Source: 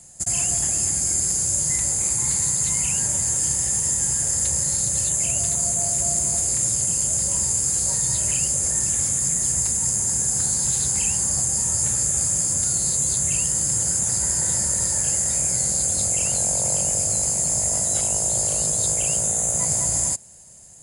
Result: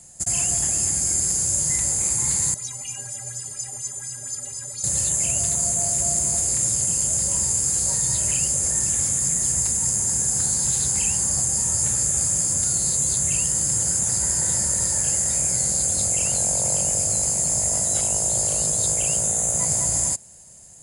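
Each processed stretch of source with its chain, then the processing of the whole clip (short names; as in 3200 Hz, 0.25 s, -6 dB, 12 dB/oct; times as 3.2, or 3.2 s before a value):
2.54–4.84 metallic resonator 120 Hz, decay 0.42 s, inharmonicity 0.03 + LFO bell 4.2 Hz 460–5800 Hz +12 dB
whole clip: dry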